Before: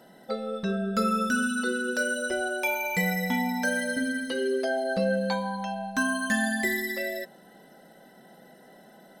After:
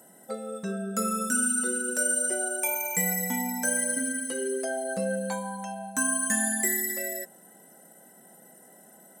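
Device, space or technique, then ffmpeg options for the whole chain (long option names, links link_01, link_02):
budget condenser microphone: -af "highpass=110,highshelf=frequency=5900:width_type=q:width=3:gain=12,volume=-3.5dB"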